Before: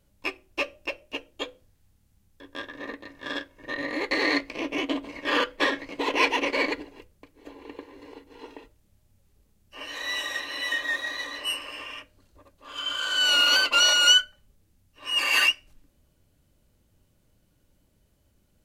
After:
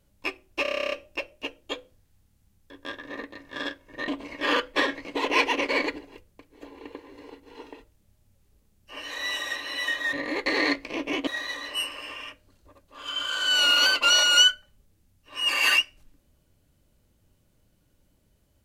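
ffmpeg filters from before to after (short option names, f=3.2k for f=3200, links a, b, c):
-filter_complex "[0:a]asplit=14[a][b][c][d][e][f][g][h][i][j][k][l][m][n];[a]atrim=end=0.652[o];[b]atrim=start=0.618:end=0.652[p];[c]atrim=start=0.618:end=0.652[q];[d]atrim=start=0.618:end=0.652[r];[e]atrim=start=0.618:end=0.652[s];[f]atrim=start=0.618:end=0.652[t];[g]atrim=start=0.618:end=0.652[u];[h]atrim=start=0.618:end=0.652[v];[i]atrim=start=0.618:end=0.652[w];[j]atrim=start=0.618:end=0.652[x];[k]atrim=start=0.618:end=3.782[y];[l]atrim=start=4.918:end=10.972[z];[m]atrim=start=3.778:end=4.922[aa];[n]atrim=start=10.968[ab];[o][p]acrossfade=d=0.004:c1=hsin:c2=hsin[ac];[ac][q]acrossfade=d=0.004:c1=hsin:c2=hsin[ad];[ad][r]acrossfade=d=0.004:c1=hsin:c2=hsin[ae];[ae][s]acrossfade=d=0.004:c1=hsin:c2=hsin[af];[af][t]acrossfade=d=0.004:c1=hsin:c2=hsin[ag];[ag][u]acrossfade=d=0.004:c1=hsin:c2=hsin[ah];[ah][v]acrossfade=d=0.004:c1=hsin:c2=hsin[ai];[ai][w]acrossfade=d=0.004:c1=hsin:c2=hsin[aj];[aj][x]acrossfade=d=0.004:c1=hsin:c2=hsin[ak];[ak][y]acrossfade=d=0.004:c1=hsin:c2=hsin[al];[al][z]acrossfade=d=0.004:c1=hsin:c2=hsin[am];[am][aa]acrossfade=d=0.004:c1=hsin:c2=hsin[an];[an][ab]acrossfade=d=0.004:c1=hsin:c2=hsin"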